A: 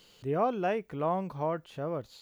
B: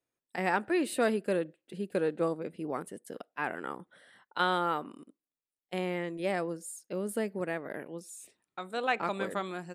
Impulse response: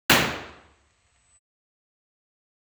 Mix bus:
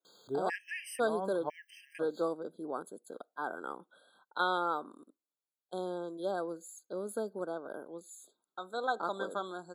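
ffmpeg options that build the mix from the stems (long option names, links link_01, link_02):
-filter_complex "[0:a]adelay=50,volume=0.5dB[link_01];[1:a]volume=-2dB,asplit=2[link_02][link_03];[link_03]apad=whole_len=100052[link_04];[link_01][link_04]sidechaincompress=threshold=-41dB:ratio=4:attack=27:release=102[link_05];[link_05][link_02]amix=inputs=2:normalize=0,highpass=290,afftfilt=real='re*gt(sin(2*PI*1*pts/sr)*(1-2*mod(floor(b*sr/1024/1600),2)),0)':imag='im*gt(sin(2*PI*1*pts/sr)*(1-2*mod(floor(b*sr/1024/1600),2)),0)':win_size=1024:overlap=0.75"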